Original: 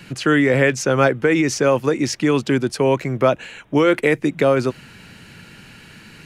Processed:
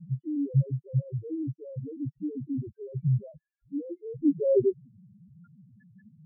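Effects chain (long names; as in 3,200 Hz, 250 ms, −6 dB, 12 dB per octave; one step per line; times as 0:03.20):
spectral peaks only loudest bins 1
low-pass filter sweep 160 Hz → 6,200 Hz, 0:04.02–0:06.09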